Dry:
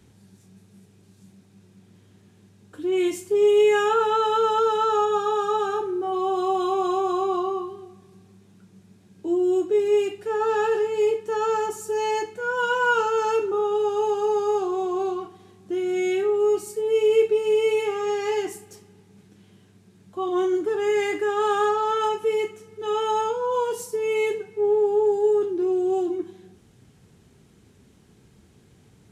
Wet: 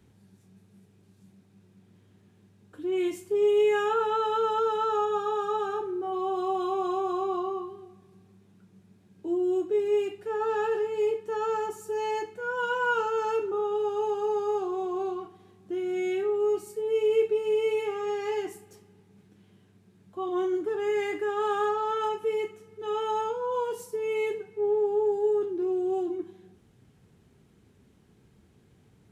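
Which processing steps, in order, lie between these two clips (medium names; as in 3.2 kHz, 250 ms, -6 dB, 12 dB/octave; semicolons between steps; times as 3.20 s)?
peaking EQ 6.9 kHz -5.5 dB 1.8 oct; trim -5 dB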